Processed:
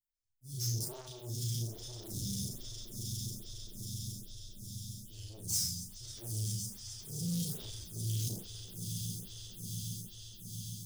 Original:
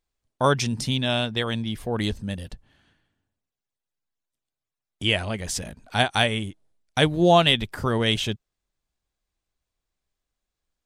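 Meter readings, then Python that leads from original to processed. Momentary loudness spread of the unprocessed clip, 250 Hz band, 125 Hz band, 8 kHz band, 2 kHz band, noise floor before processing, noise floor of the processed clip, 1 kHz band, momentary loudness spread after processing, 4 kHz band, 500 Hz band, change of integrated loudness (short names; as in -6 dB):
14 LU, -16.5 dB, -8.5 dB, 0.0 dB, under -35 dB, under -85 dBFS, -52 dBFS, under -35 dB, 11 LU, -16.5 dB, -28.5 dB, -16.0 dB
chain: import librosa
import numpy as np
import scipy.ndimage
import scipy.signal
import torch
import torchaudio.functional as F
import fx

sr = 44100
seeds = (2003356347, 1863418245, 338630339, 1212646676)

p1 = fx.spec_trails(x, sr, decay_s=0.53)
p2 = fx.fuzz(p1, sr, gain_db=27.0, gate_db=-35.0)
p3 = p1 + (p2 * librosa.db_to_amplitude(-5.0))
p4 = scipy.signal.sosfilt(scipy.signal.ellip(3, 1.0, 40, [190.0, 4900.0], 'bandstop', fs=sr, output='sos'), p3)
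p5 = fx.dynamic_eq(p4, sr, hz=8600.0, q=1.3, threshold_db=-36.0, ratio=4.0, max_db=-5)
p6 = fx.comb_fb(p5, sr, f0_hz=120.0, decay_s=0.27, harmonics='odd', damping=0.0, mix_pct=90)
p7 = fx.rev_spring(p6, sr, rt60_s=1.1, pass_ms=(46,), chirp_ms=25, drr_db=2.0)
p8 = fx.auto_swell(p7, sr, attack_ms=316.0)
p9 = p8 + fx.echo_swell(p8, sr, ms=136, loudest=8, wet_db=-13, dry=0)
p10 = 10.0 ** (-35.0 / 20.0) * np.tanh(p9 / 10.0 ** (-35.0 / 20.0))
p11 = fx.high_shelf(p10, sr, hz=4500.0, db=10.5)
p12 = fx.doubler(p11, sr, ms=35.0, db=-4.5)
y = fx.stagger_phaser(p12, sr, hz=1.2)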